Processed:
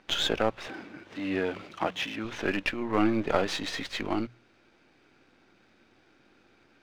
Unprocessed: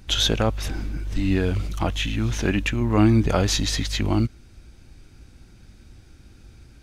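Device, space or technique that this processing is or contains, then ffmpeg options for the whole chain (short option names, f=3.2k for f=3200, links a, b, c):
crystal radio: -filter_complex "[0:a]highpass=370,lowpass=2.8k,aeval=exprs='if(lt(val(0),0),0.447*val(0),val(0))':c=same,bandreject=f=60:t=h:w=6,bandreject=f=120:t=h:w=6,bandreject=f=180:t=h:w=6,asettb=1/sr,asplit=3[a][b][c];[a]atrim=end=0.674[d];[b]atrim=start=0.67:end=2.25,asetpts=PTS-STARTPTS,afade=t=in:d=0.004:c=qsin,afade=t=out:st=1.576:d=0.004:c=qsin,highpass=95[e];[c]atrim=start=2.246[f];[d][e]acrossfade=d=0.004:c1=hsin:c2=qsin[g];[g][f]acrossfade=d=0.004:c1=qsin:c2=hsin,volume=1.5dB"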